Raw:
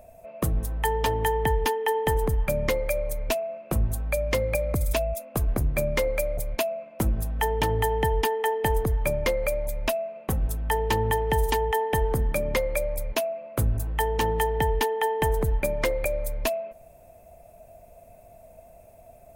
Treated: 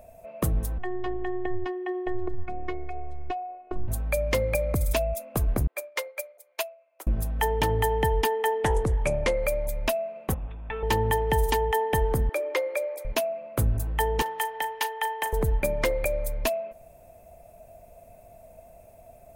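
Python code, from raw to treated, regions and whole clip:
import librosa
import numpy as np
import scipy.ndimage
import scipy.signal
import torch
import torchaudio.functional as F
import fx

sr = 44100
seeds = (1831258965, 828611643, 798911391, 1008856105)

y = fx.chain(x, sr, fx.robotise(hz=365.0),
    fx.spacing_loss(db_at_10k=39), at=(0.78, 3.88))
y = fx.chain(y, sr, fx.bessel_highpass(hz=670.0, order=8),
    fx.upward_expand(threshold_db=-37.0, expansion=2.5), at=(5.67, 7.07))
y = fx.chain(y, sr, fx.high_shelf(hz=5600.0, db=-4.0),
    fx.resample_bad(factor=2, down='none', up='filtered'),
    fx.doppler_dist(depth_ms=0.23), at=(8.59, 9.39))
y = fx.chain(y, sr, fx.lower_of_two(delay_ms=0.51),
    fx.cheby_ripple(hz=3600.0, ripple_db=9), at=(10.34, 10.83))
y = fx.chain(y, sr, fx.cheby1_highpass(hz=300.0, order=10),
    fx.high_shelf(hz=5900.0, db=-8.0), at=(12.29, 13.05))
y = fx.chain(y, sr, fx.highpass(hz=810.0, slope=12),
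    fx.doubler(ms=37.0, db=-14.0), at=(14.22, 15.33))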